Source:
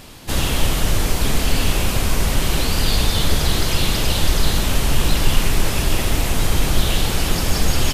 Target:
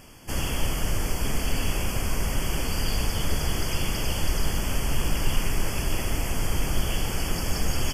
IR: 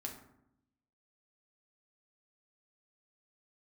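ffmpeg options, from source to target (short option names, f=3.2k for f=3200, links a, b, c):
-af "asuperstop=centerf=3900:order=12:qfactor=3.6,volume=-8dB"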